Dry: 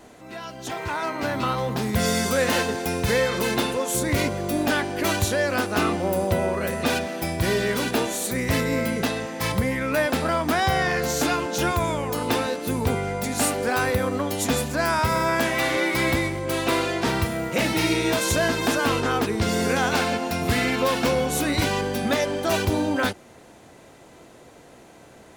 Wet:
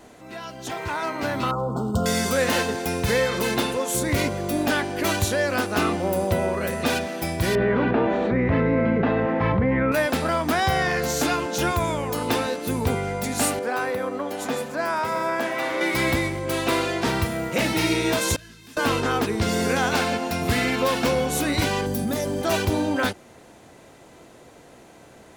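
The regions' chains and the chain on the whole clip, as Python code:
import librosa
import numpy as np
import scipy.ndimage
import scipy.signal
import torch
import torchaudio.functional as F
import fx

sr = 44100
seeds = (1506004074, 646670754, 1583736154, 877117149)

y = fx.chain(x, sr, fx.brickwall_bandstop(low_hz=1500.0, high_hz=13000.0),
    fx.resample_linear(factor=2), at=(1.51, 2.06))
y = fx.chain(y, sr, fx.bessel_lowpass(hz=1500.0, order=4),
    fx.env_flatten(amount_pct=70), at=(7.55, 9.92))
y = fx.chain(y, sr, fx.bessel_highpass(hz=330.0, order=2),
    fx.high_shelf(hz=2300.0, db=-10.0),
    fx.echo_single(ms=660, db=-13.5), at=(13.59, 15.81))
y = fx.chain(y, sr, fx.tone_stack(knobs='6-0-2'),
    fx.detune_double(cents=28), at=(18.36, 18.77))
y = fx.chain(y, sr, fx.curve_eq(hz=(190.0, 430.0, 2600.0, 15000.0), db=(0, -6, -14, 5)),
    fx.env_flatten(amount_pct=70), at=(21.86, 22.42))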